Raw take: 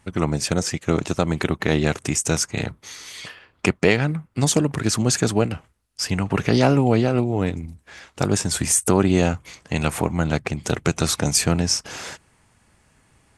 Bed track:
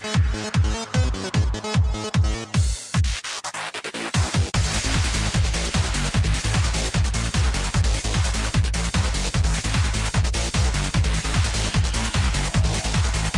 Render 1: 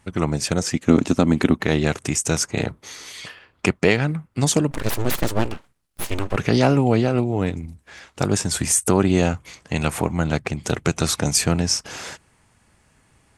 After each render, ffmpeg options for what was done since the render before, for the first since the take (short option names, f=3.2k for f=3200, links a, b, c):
-filter_complex "[0:a]asettb=1/sr,asplit=3[a][b][c];[a]atrim=end=0.744[d];[b]atrim=start=0.74:end=1.6,asetpts=PTS-STARTPTS,afade=t=in:d=0.004:c=qsin,afade=t=out:st=0.856:d=0.004:c=qsin,equalizer=f=250:w=2.4:g=12.5[e];[c]atrim=start=1.596[f];[d][e]acrossfade=d=0.004:c1=hsin:c2=qsin[g];[g][f]acrossfade=d=0.004:c1=qsin:c2=hsin,asettb=1/sr,asplit=3[h][i][j];[h]atrim=end=2.404[k];[i]atrim=start=2.4:end=3.12,asetpts=PTS-STARTPTS,afade=t=in:d=0.004:c=qsin,afade=t=out:st=0.716:d=0.004:c=qsin,equalizer=f=450:t=o:w=2.2:g=5[l];[j]atrim=start=3.116[m];[k][l]acrossfade=d=0.004:c1=hsin:c2=qsin[n];[n][m]acrossfade=d=0.004:c1=qsin:c2=hsin,asplit=3[o][p][q];[o]afade=t=out:st=4.7:d=0.02[r];[p]aeval=exprs='abs(val(0))':c=same,afade=t=in:st=4.7:d=0.02,afade=t=out:st=6.35:d=0.02[s];[q]afade=t=in:st=6.35:d=0.02[t];[r][s][t]amix=inputs=3:normalize=0"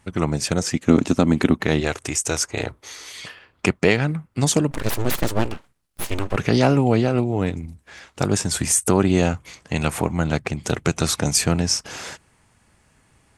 -filter_complex "[0:a]asettb=1/sr,asplit=3[a][b][c];[a]atrim=end=1.804[d];[b]atrim=start=1.8:end=3.14,asetpts=PTS-STARTPTS,afade=t=in:d=0.004:c=qsin,afade=t=out:st=1.336:d=0.004:c=qsin,equalizer=f=180:t=o:w=0.77:g=-13.5[e];[c]atrim=start=3.136[f];[d][e]acrossfade=d=0.004:c1=hsin:c2=qsin[g];[g][f]acrossfade=d=0.004:c1=qsin:c2=hsin"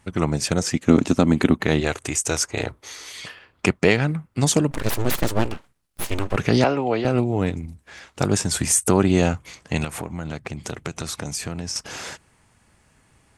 -filter_complex "[0:a]asettb=1/sr,asplit=3[a][b][c];[a]atrim=end=1.334[d];[b]atrim=start=1.33:end=2.19,asetpts=PTS-STARTPTS,afade=t=in:d=0.004:c=qsin,afade=t=out:st=0.856:d=0.004:c=qsin,bandreject=f=5.4k:w=8.9[e];[c]atrim=start=2.186[f];[d][e]acrossfade=d=0.004:c1=hsin:c2=qsin[g];[g][f]acrossfade=d=0.004:c1=qsin:c2=hsin,asettb=1/sr,asplit=3[h][i][j];[h]atrim=end=6.644[k];[i]atrim=start=6.64:end=7.05,asetpts=PTS-STARTPTS,afade=t=in:d=0.004:c=qsin,afade=t=out:st=0.406:d=0.004:c=qsin,acrossover=split=330 5300:gain=0.2 1 0.0631[l][m][n];[l][m][n]amix=inputs=3:normalize=0[o];[j]atrim=start=7.046[p];[k][o]acrossfade=d=0.004:c1=hsin:c2=qsin[q];[q][p]acrossfade=d=0.004:c1=qsin:c2=hsin,asettb=1/sr,asplit=3[r][s][t];[r]atrim=end=9.844[u];[s]atrim=start=9.84:end=11.76,asetpts=PTS-STARTPTS,afade=t=in:d=0.004:c=qsin,afade=t=out:st=1.916:d=0.004:c=qsin,acompressor=threshold=-28dB:ratio=3:attack=3.2:release=140:knee=1:detection=peak[v];[t]atrim=start=11.756[w];[u][v]acrossfade=d=0.004:c1=hsin:c2=qsin[x];[x][w]acrossfade=d=0.004:c1=qsin:c2=hsin"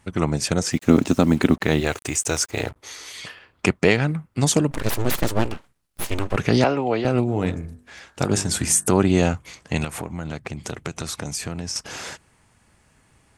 -filter_complex "[0:a]asettb=1/sr,asplit=3[a][b][c];[a]atrim=end=0.724[d];[b]atrim=start=0.72:end=2.76,asetpts=PTS-STARTPTS,afade=t=in:d=0.004:c=qsin,afade=t=out:st=2.036:d=0.004:c=qsin,acrusher=bits=6:mix=0:aa=0.5[e];[c]atrim=start=2.756[f];[d][e]acrossfade=d=0.004:c1=hsin:c2=qsin[g];[g][f]acrossfade=d=0.004:c1=qsin:c2=hsin,asplit=3[h][i][j];[h]afade=t=out:st=7.27:d=0.02[k];[i]bandreject=f=49.03:t=h:w=4,bandreject=f=98.06:t=h:w=4,bandreject=f=147.09:t=h:w=4,bandreject=f=196.12:t=h:w=4,bandreject=f=245.15:t=h:w=4,bandreject=f=294.18:t=h:w=4,bandreject=f=343.21:t=h:w=4,bandreject=f=392.24:t=h:w=4,bandreject=f=441.27:t=h:w=4,bandreject=f=490.3:t=h:w=4,bandreject=f=539.33:t=h:w=4,bandreject=f=588.36:t=h:w=4,bandreject=f=637.39:t=h:w=4,bandreject=f=686.42:t=h:w=4,bandreject=f=735.45:t=h:w=4,bandreject=f=784.48:t=h:w=4,bandreject=f=833.51:t=h:w=4,bandreject=f=882.54:t=h:w=4,bandreject=f=931.57:t=h:w=4,bandreject=f=980.6:t=h:w=4,bandreject=f=1.02963k:t=h:w=4,bandreject=f=1.07866k:t=h:w=4,bandreject=f=1.12769k:t=h:w=4,bandreject=f=1.17672k:t=h:w=4,bandreject=f=1.22575k:t=h:w=4,bandreject=f=1.27478k:t=h:w=4,bandreject=f=1.32381k:t=h:w=4,bandreject=f=1.37284k:t=h:w=4,bandreject=f=1.42187k:t=h:w=4,bandreject=f=1.4709k:t=h:w=4,bandreject=f=1.51993k:t=h:w=4,bandreject=f=1.56896k:t=h:w=4,bandreject=f=1.61799k:t=h:w=4,bandreject=f=1.66702k:t=h:w=4,bandreject=f=1.71605k:t=h:w=4,bandreject=f=1.76508k:t=h:w=4,bandreject=f=1.81411k:t=h:w=4,afade=t=in:st=7.27:d=0.02,afade=t=out:st=8.91:d=0.02[l];[j]afade=t=in:st=8.91:d=0.02[m];[k][l][m]amix=inputs=3:normalize=0"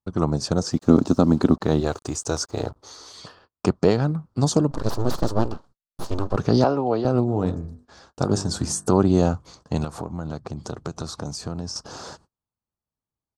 -af "agate=range=-33dB:threshold=-47dB:ratio=16:detection=peak,firequalizer=gain_entry='entry(1200,0);entry(2100,-20);entry(4400,-1);entry(11000,-17)':delay=0.05:min_phase=1"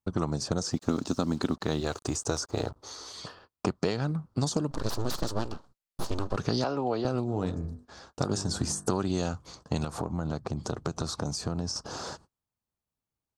-filter_complex "[0:a]acrossover=split=1600[a][b];[a]acompressor=threshold=-25dB:ratio=6[c];[b]alimiter=limit=-22.5dB:level=0:latency=1:release=168[d];[c][d]amix=inputs=2:normalize=0"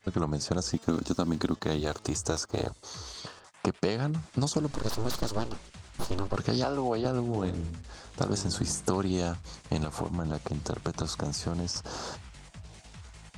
-filter_complex "[1:a]volume=-26.5dB[a];[0:a][a]amix=inputs=2:normalize=0"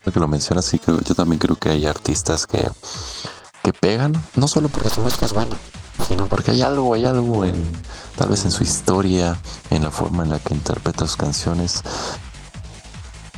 -af "volume=12dB,alimiter=limit=-1dB:level=0:latency=1"